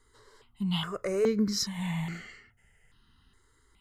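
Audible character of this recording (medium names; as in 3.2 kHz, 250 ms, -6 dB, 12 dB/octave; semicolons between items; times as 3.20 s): notches that jump at a steady rate 2.4 Hz 690–3500 Hz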